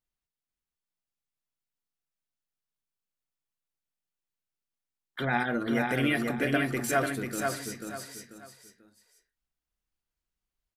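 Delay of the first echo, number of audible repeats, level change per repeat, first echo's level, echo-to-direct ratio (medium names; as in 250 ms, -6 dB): 490 ms, 3, -10.0 dB, -4.0 dB, -3.5 dB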